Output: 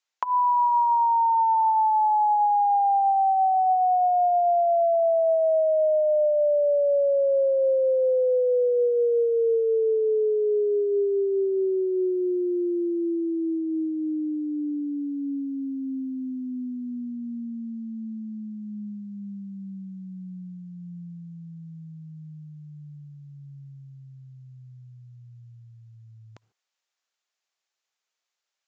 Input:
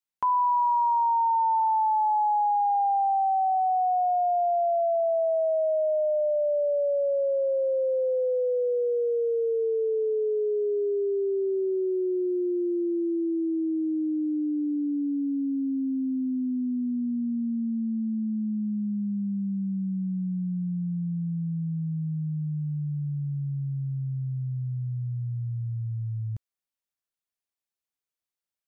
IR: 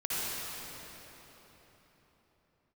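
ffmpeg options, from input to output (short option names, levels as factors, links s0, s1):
-filter_complex "[0:a]highpass=590,bandreject=f=1000:w=25,asplit=2[s0][s1];[s1]alimiter=level_in=1.41:limit=0.0631:level=0:latency=1:release=163,volume=0.708,volume=1.26[s2];[s0][s2]amix=inputs=2:normalize=0,acompressor=threshold=0.0708:ratio=6,asplit=2[s3][s4];[1:a]atrim=start_sample=2205,afade=t=out:st=0.2:d=0.01,atrim=end_sample=9261[s5];[s4][s5]afir=irnorm=-1:irlink=0,volume=0.0596[s6];[s3][s6]amix=inputs=2:normalize=0,aresample=16000,aresample=44100,volume=1.5"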